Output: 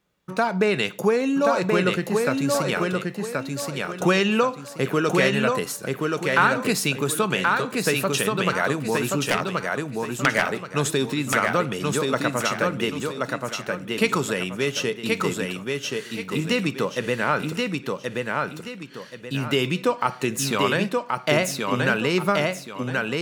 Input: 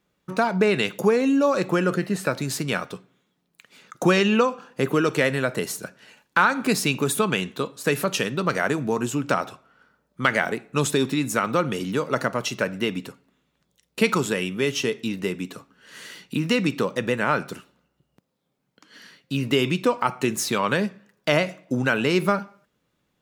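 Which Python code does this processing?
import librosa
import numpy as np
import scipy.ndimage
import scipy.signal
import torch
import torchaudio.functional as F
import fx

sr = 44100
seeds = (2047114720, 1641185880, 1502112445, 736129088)

p1 = fx.self_delay(x, sr, depth_ms=0.29, at=(9.24, 10.26))
p2 = fx.peak_eq(p1, sr, hz=270.0, db=-3.0, octaves=0.99)
y = p2 + fx.echo_feedback(p2, sr, ms=1078, feedback_pct=32, wet_db=-3.0, dry=0)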